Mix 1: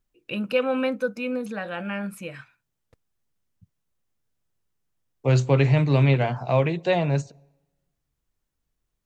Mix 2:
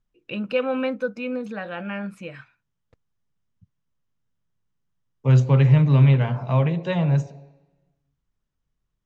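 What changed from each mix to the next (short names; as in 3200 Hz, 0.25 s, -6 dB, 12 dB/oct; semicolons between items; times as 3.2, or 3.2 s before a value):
second voice: send +11.0 dB; master: add air absorption 88 m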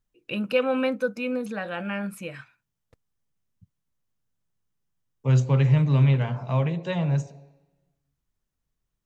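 second voice -4.0 dB; master: remove air absorption 88 m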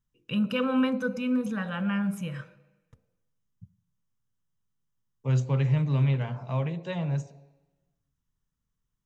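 first voice: send on; second voice -5.0 dB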